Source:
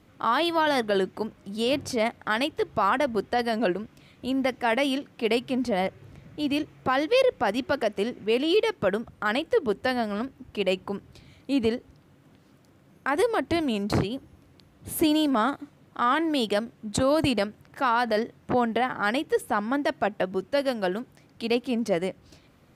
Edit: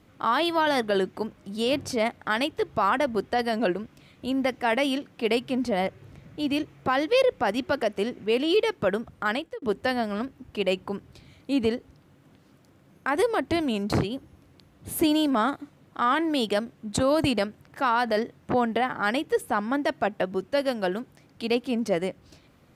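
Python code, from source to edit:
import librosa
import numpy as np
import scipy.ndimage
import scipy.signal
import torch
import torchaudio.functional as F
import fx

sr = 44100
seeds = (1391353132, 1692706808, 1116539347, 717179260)

y = fx.edit(x, sr, fx.fade_out_span(start_s=9.28, length_s=0.34), tone=tone)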